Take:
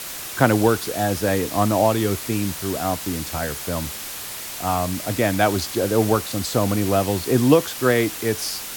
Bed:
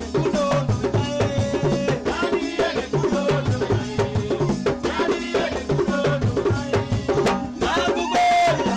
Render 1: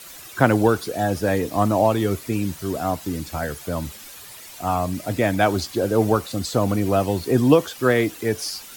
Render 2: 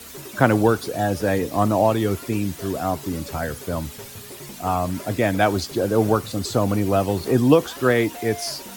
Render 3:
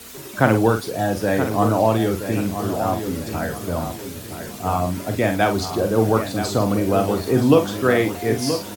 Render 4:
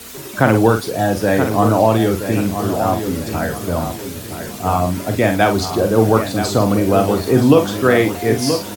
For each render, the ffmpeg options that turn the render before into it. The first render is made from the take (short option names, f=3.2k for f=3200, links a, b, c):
-af "afftdn=nr=11:nf=-33"
-filter_complex "[1:a]volume=-19.5dB[a];[0:a][a]amix=inputs=2:normalize=0"
-filter_complex "[0:a]asplit=2[a][b];[b]adelay=45,volume=-7dB[c];[a][c]amix=inputs=2:normalize=0,asplit=2[d][e];[e]adelay=975,lowpass=f=4k:p=1,volume=-9dB,asplit=2[f][g];[g]adelay=975,lowpass=f=4k:p=1,volume=0.39,asplit=2[h][i];[i]adelay=975,lowpass=f=4k:p=1,volume=0.39,asplit=2[j][k];[k]adelay=975,lowpass=f=4k:p=1,volume=0.39[l];[d][f][h][j][l]amix=inputs=5:normalize=0"
-af "volume=4.5dB,alimiter=limit=-1dB:level=0:latency=1"